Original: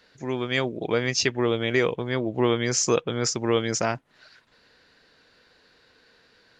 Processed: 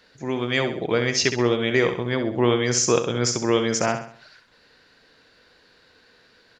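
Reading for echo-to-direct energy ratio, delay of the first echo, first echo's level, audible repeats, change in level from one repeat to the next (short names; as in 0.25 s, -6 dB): -7.5 dB, 66 ms, -8.5 dB, 4, -7.5 dB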